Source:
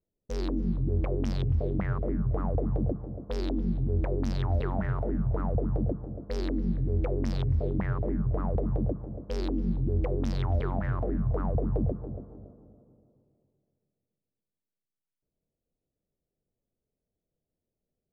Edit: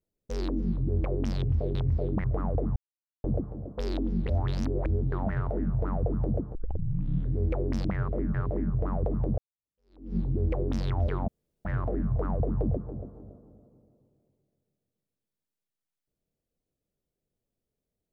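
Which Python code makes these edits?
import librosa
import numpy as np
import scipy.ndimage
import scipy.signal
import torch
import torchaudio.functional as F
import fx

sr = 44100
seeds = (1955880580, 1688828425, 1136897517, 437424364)

y = fx.edit(x, sr, fx.swap(start_s=1.75, length_s=0.49, other_s=7.37, other_length_s=0.49),
    fx.insert_silence(at_s=2.76, length_s=0.48),
    fx.reverse_span(start_s=3.78, length_s=0.86),
    fx.tape_start(start_s=6.07, length_s=0.78),
    fx.fade_in_span(start_s=8.9, length_s=0.78, curve='exp'),
    fx.insert_room_tone(at_s=10.8, length_s=0.37), tone=tone)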